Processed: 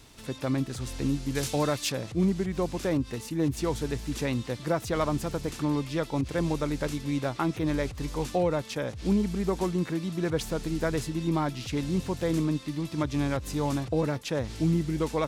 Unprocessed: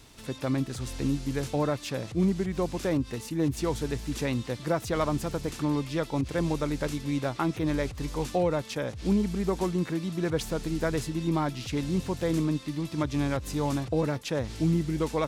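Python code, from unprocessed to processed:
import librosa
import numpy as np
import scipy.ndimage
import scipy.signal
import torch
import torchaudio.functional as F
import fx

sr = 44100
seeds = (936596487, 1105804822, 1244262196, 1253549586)

y = fx.high_shelf(x, sr, hz=2500.0, db=10.5, at=(1.35, 1.92))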